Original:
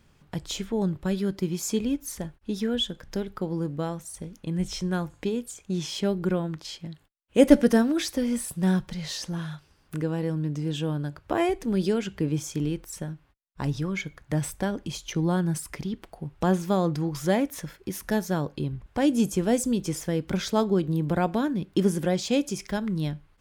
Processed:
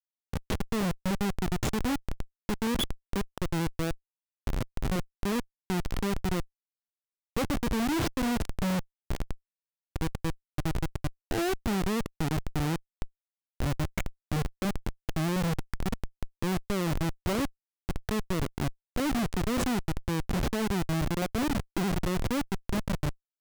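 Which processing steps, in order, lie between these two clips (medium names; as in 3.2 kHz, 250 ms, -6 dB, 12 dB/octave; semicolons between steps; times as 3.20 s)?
4.33–4.91 s: ring modulator 48 Hz; Schmitt trigger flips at -25 dBFS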